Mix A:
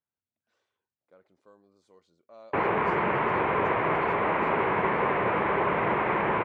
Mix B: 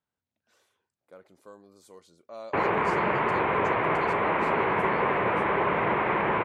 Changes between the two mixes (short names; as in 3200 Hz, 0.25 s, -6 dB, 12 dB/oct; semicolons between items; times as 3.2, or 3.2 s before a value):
speech +8.0 dB; master: remove air absorption 100 m